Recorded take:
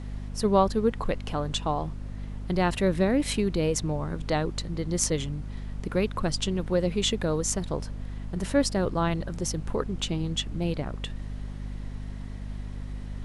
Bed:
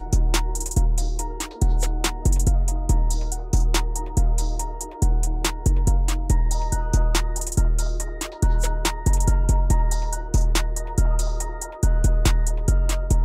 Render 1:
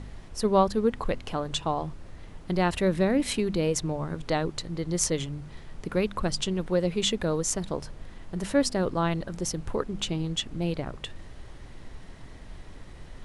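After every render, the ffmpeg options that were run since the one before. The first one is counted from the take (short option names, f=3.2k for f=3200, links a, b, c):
-af "bandreject=f=50:t=h:w=4,bandreject=f=100:t=h:w=4,bandreject=f=150:t=h:w=4,bandreject=f=200:t=h:w=4,bandreject=f=250:t=h:w=4"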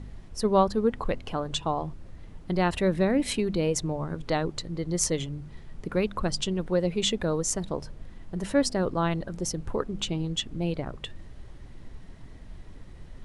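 -af "afftdn=nr=6:nf=-45"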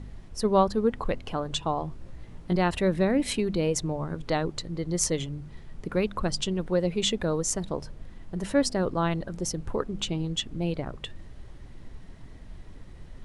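-filter_complex "[0:a]asettb=1/sr,asplit=3[a][b][c];[a]atrim=end=1.904[d];[b]atrim=start=1.9:end=2.56,asetpts=PTS-STARTPTS,afade=t=in:d=0.004:c=qsin,afade=t=out:st=0.656:d=0.004:c=qsin,asplit=2[e][f];[f]adelay=17,volume=-4dB[g];[e][g]amix=inputs=2:normalize=0,atrim=end_sample=29106[h];[c]atrim=start=2.556[i];[d][h]acrossfade=d=0.004:c1=hsin:c2=qsin[j];[j][i]acrossfade=d=0.004:c1=qsin:c2=hsin"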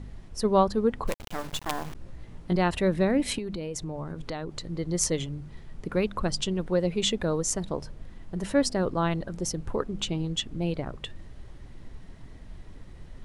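-filter_complex "[0:a]asettb=1/sr,asplit=3[a][b][c];[a]atrim=end=1.074[d];[b]atrim=start=1.07:end=1.95,asetpts=PTS-STARTPTS,afade=t=in:d=0.004:c=qsin,afade=t=out:st=0.876:d=0.004:c=qsin,acrusher=bits=4:dc=4:mix=0:aa=0.000001[e];[c]atrim=start=1.946[f];[d][e]acrossfade=d=0.004:c1=hsin:c2=qsin[g];[g][f]acrossfade=d=0.004:c1=qsin:c2=hsin,asettb=1/sr,asplit=3[h][i][j];[h]atrim=end=3.384[k];[i]atrim=start=3.38:end=4.68,asetpts=PTS-STARTPTS,afade=t=in:d=0.004:c=qsin,afade=t=out:st=1.296:d=0.004:c=qsin,acompressor=threshold=-30dB:ratio=6:attack=3.2:release=140:knee=1:detection=peak[l];[j]atrim=start=4.676[m];[k][l]acrossfade=d=0.004:c1=hsin:c2=qsin[n];[n][m]acrossfade=d=0.004:c1=qsin:c2=hsin"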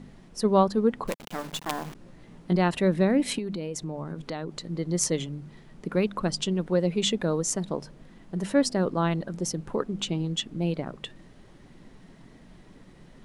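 -af "lowshelf=f=120:t=q:w=1.5:g=-11.5"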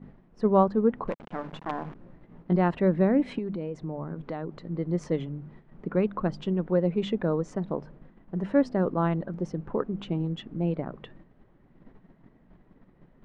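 -af "lowpass=1.6k,agate=range=-8dB:threshold=-48dB:ratio=16:detection=peak"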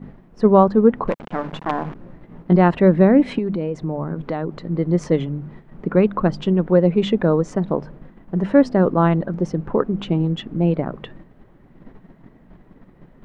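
-af "volume=9.5dB,alimiter=limit=-3dB:level=0:latency=1"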